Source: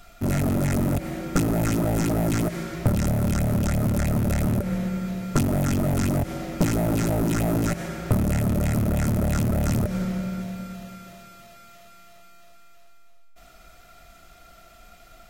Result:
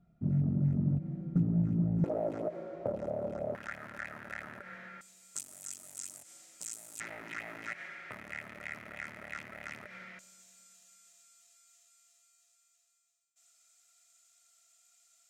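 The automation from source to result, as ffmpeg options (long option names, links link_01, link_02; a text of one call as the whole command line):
ffmpeg -i in.wav -af "asetnsamples=nb_out_samples=441:pad=0,asendcmd='2.04 bandpass f 560;3.55 bandpass f 1700;5.01 bandpass f 7800;7 bandpass f 2000;10.19 bandpass f 7400',bandpass=frequency=160:width_type=q:width=3.8:csg=0" out.wav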